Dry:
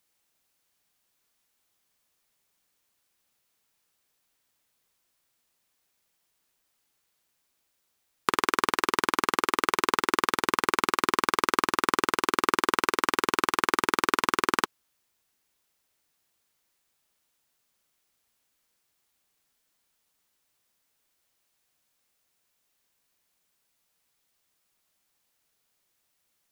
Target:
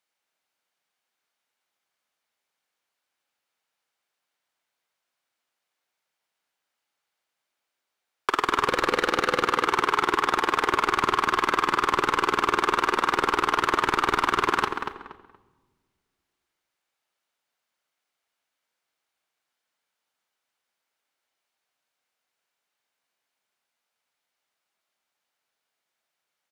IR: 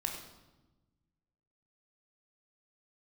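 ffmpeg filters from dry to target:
-filter_complex "[0:a]asettb=1/sr,asplit=3[link_01][link_02][link_03];[link_01]atrim=end=8.684[link_04];[link_02]atrim=start=8.68:end=9.42,asetpts=PTS-STARTPTS,afade=type=in:duration=0.004:curve=qsin,afade=type=out:start_time=0.736:duration=0.004:curve=qsin,equalizer=frequency=500:width_type=o:width=0.33:gain=9,equalizer=frequency=1000:width_type=o:width=0.33:gain=-9,equalizer=frequency=4000:width_type=o:width=0.33:gain=4[link_05];[link_03]atrim=start=9.416[link_06];[link_04][link_05]acrossfade=duration=0.004:curve1=hsin:curve2=qsin[link_07];[link_07][link_06]acrossfade=duration=0.004:curve1=qsin:curve2=hsin,asplit=2[link_08][link_09];[link_09]highpass=frequency=720:poles=1,volume=30dB,asoftclip=type=tanh:threshold=-1dB[link_10];[link_08][link_10]amix=inputs=2:normalize=0,lowpass=frequency=2300:poles=1,volume=-6dB,agate=range=-17dB:threshold=-50dB:ratio=16:detection=peak,asplit=2[link_11][link_12];[link_12]adelay=236,lowpass=frequency=2500:poles=1,volume=-6dB,asplit=2[link_13][link_14];[link_14]adelay=236,lowpass=frequency=2500:poles=1,volume=0.27,asplit=2[link_15][link_16];[link_16]adelay=236,lowpass=frequency=2500:poles=1,volume=0.27[link_17];[link_11][link_13][link_15][link_17]amix=inputs=4:normalize=0,asplit=2[link_18][link_19];[1:a]atrim=start_sample=2205,asetrate=34398,aresample=44100[link_20];[link_19][link_20]afir=irnorm=-1:irlink=0,volume=-12dB[link_21];[link_18][link_21]amix=inputs=2:normalize=0,volume=-8.5dB"

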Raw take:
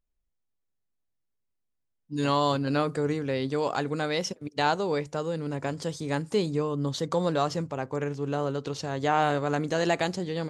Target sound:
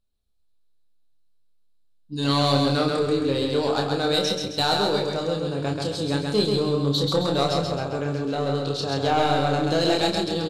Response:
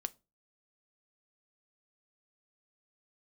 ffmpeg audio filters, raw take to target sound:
-filter_complex "[0:a]equalizer=frequency=1000:width_type=o:width=0.33:gain=-4,equalizer=frequency=2000:width_type=o:width=0.33:gain=-11,equalizer=frequency=4000:width_type=o:width=0.33:gain=12,equalizer=frequency=6300:width_type=o:width=0.33:gain=-6,asplit=2[link_01][link_02];[link_02]aeval=exprs='0.075*(abs(mod(val(0)/0.075+3,4)-2)-1)':channel_layout=same,volume=-7.5dB[link_03];[link_01][link_03]amix=inputs=2:normalize=0,asplit=2[link_04][link_05];[link_05]adelay=29,volume=-5dB[link_06];[link_04][link_06]amix=inputs=2:normalize=0,aecho=1:1:133|266|399|532|665|798:0.668|0.294|0.129|0.0569|0.0251|0.011[link_07];[1:a]atrim=start_sample=2205,asetrate=23373,aresample=44100[link_08];[link_07][link_08]afir=irnorm=-1:irlink=0,volume=-2.5dB"

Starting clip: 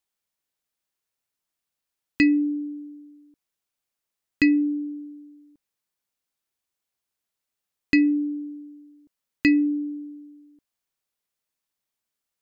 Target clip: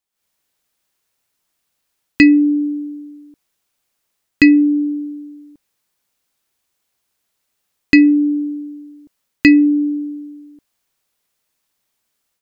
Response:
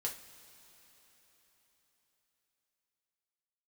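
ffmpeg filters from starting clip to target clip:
-af "dynaudnorm=framelen=120:gausssize=3:maxgain=12.5dB"

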